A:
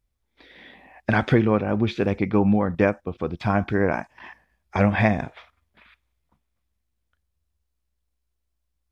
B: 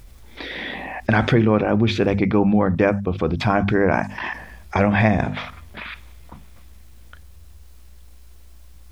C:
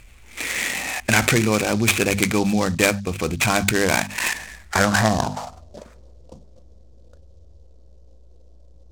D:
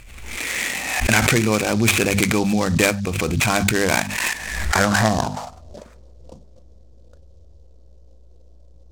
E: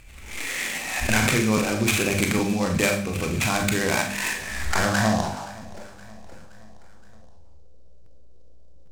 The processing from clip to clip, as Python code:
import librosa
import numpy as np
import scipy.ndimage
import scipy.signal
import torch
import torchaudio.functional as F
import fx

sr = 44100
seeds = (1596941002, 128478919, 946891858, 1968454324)

y1 = fx.low_shelf(x, sr, hz=180.0, db=3.0)
y1 = fx.hum_notches(y1, sr, base_hz=50, count=5)
y1 = fx.env_flatten(y1, sr, amount_pct=50)
y2 = fx.filter_sweep_lowpass(y1, sr, from_hz=2500.0, to_hz=520.0, start_s=4.43, end_s=5.84, q=4.4)
y2 = fx.high_shelf(y2, sr, hz=3400.0, db=9.5)
y2 = fx.noise_mod_delay(y2, sr, seeds[0], noise_hz=4800.0, depth_ms=0.049)
y2 = y2 * librosa.db_to_amplitude(-3.5)
y3 = fx.pre_swell(y2, sr, db_per_s=42.0)
y4 = fx.echo_feedback(y3, sr, ms=521, feedback_pct=56, wet_db=-20.5)
y4 = fx.rev_schroeder(y4, sr, rt60_s=0.42, comb_ms=29, drr_db=2.5)
y4 = fx.buffer_crackle(y4, sr, first_s=0.75, period_s=0.81, block=512, kind='repeat')
y4 = y4 * librosa.db_to_amplitude(-6.0)